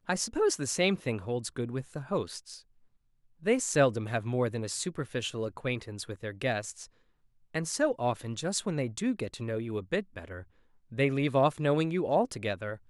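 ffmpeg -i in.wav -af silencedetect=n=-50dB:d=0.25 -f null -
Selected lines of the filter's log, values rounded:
silence_start: 2.61
silence_end: 3.42 | silence_duration: 0.81
silence_start: 6.86
silence_end: 7.55 | silence_duration: 0.69
silence_start: 10.44
silence_end: 10.91 | silence_duration: 0.48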